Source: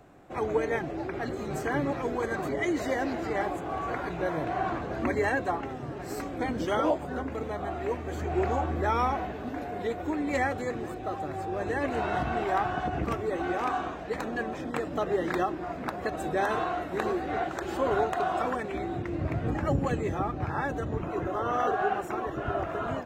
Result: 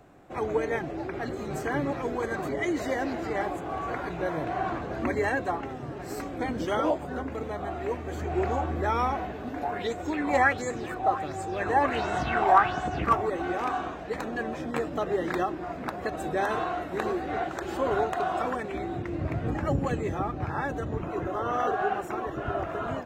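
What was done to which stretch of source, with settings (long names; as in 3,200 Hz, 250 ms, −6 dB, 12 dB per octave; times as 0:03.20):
0:09.63–0:13.30: auto-filter bell 1.4 Hz 810–7,800 Hz +15 dB
0:14.43–0:14.90: double-tracking delay 13 ms −6 dB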